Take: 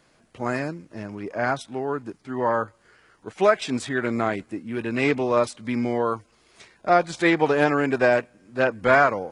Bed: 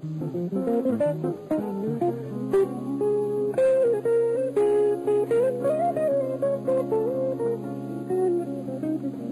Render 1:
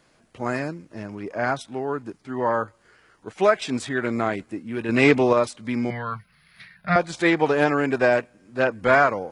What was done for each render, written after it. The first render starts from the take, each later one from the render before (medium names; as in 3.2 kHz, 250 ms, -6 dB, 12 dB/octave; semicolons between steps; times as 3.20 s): 4.89–5.33 s: gain +5.5 dB; 5.90–6.96 s: FFT filter 100 Hz 0 dB, 170 Hz +14 dB, 290 Hz -21 dB, 680 Hz -9 dB, 970 Hz -7 dB, 1.8 kHz +9 dB, 2.9 kHz 0 dB, 4.5 kHz +2 dB, 7.6 kHz -28 dB, 11 kHz +10 dB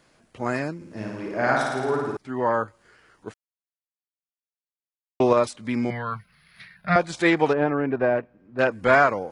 0.76–2.17 s: flutter echo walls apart 9.4 m, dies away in 1.3 s; 3.34–5.20 s: mute; 7.53–8.59 s: tape spacing loss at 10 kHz 43 dB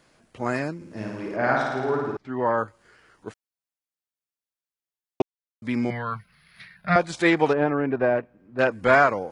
1.36–2.58 s: distance through air 120 m; 5.22–5.62 s: mute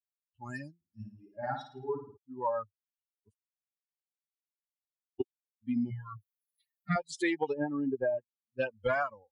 expander on every frequency bin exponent 3; compression 6:1, threshold -27 dBFS, peak gain reduction 10.5 dB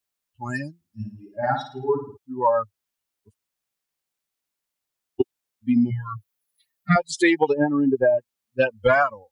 trim +12 dB